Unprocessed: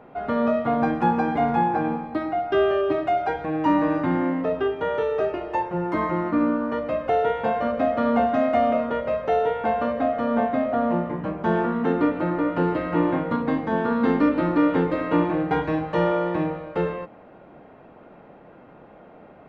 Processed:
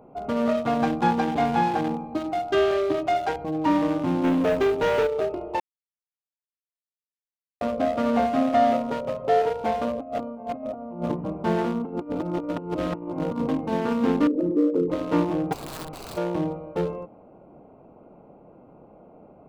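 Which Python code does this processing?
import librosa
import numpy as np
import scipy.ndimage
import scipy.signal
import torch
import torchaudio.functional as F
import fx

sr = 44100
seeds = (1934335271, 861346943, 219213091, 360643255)

y = fx.high_shelf(x, sr, hz=3200.0, db=12.0, at=(0.49, 3.44))
y = fx.leveller(y, sr, passes=2, at=(4.24, 5.07))
y = fx.comb(y, sr, ms=7.3, depth=0.67, at=(8.35, 9.42))
y = fx.over_compress(y, sr, threshold_db=-28.0, ratio=-0.5, at=(9.98, 11.13), fade=0.02)
y = fx.over_compress(y, sr, threshold_db=-26.0, ratio=-0.5, at=(11.81, 13.49))
y = fx.envelope_sharpen(y, sr, power=3.0, at=(14.27, 14.9))
y = fx.overflow_wrap(y, sr, gain_db=25.5, at=(15.52, 16.16), fade=0.02)
y = fx.edit(y, sr, fx.silence(start_s=5.6, length_s=2.01), tone=tone)
y = fx.wiener(y, sr, points=25)
y = fx.high_shelf(y, sr, hz=3900.0, db=7.0)
y = y * 10.0 ** (-1.0 / 20.0)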